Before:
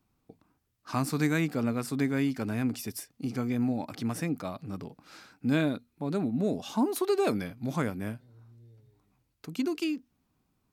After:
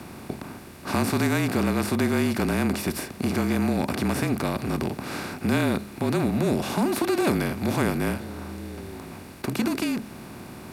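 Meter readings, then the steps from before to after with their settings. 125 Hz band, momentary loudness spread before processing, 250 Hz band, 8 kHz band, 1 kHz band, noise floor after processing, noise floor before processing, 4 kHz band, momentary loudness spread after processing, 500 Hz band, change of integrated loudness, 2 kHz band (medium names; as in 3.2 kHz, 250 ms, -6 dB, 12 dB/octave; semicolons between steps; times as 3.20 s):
+6.0 dB, 11 LU, +5.0 dB, +7.5 dB, +7.5 dB, -42 dBFS, -76 dBFS, +8.0 dB, 14 LU, +5.5 dB, +5.5 dB, +8.0 dB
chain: spectral levelling over time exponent 0.4; frequency shift -34 Hz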